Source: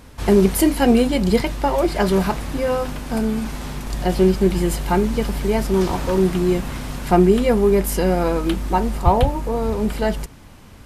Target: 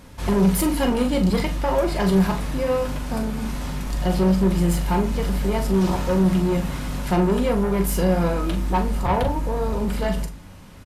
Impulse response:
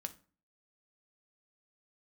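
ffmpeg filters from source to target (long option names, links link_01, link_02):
-filter_complex "[0:a]asoftclip=type=tanh:threshold=-15.5dB,asplit=2[link_01][link_02];[link_02]adelay=41,volume=-9dB[link_03];[link_01][link_03]amix=inputs=2:normalize=0[link_04];[1:a]atrim=start_sample=2205,asetrate=43659,aresample=44100[link_05];[link_04][link_05]afir=irnorm=-1:irlink=0,volume=1.5dB"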